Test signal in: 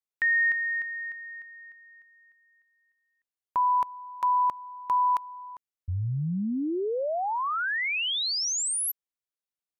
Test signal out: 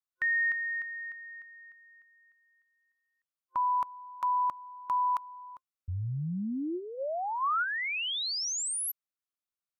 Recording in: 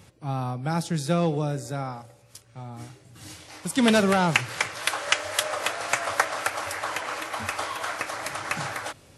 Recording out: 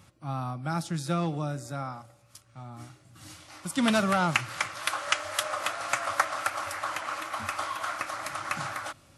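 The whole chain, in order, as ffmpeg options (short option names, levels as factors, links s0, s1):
-af "superequalizer=7b=0.398:10b=1.78,volume=0.596"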